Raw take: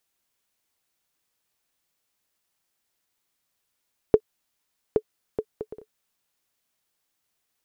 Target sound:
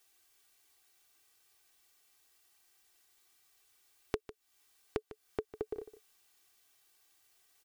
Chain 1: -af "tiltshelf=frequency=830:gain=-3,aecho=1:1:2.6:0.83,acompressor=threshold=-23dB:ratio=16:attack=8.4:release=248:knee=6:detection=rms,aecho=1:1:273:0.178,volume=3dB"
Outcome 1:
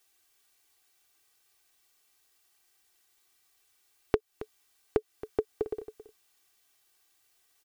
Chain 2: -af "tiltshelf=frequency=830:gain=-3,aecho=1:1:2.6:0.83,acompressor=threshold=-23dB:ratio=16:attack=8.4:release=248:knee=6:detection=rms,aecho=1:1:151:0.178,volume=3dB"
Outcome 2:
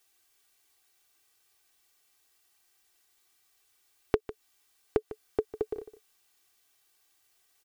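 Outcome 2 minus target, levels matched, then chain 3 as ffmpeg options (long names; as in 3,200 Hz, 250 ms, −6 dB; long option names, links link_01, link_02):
downward compressor: peak gain reduction −10 dB
-af "tiltshelf=frequency=830:gain=-3,aecho=1:1:2.6:0.83,acompressor=threshold=-33.5dB:ratio=16:attack=8.4:release=248:knee=6:detection=rms,aecho=1:1:151:0.178,volume=3dB"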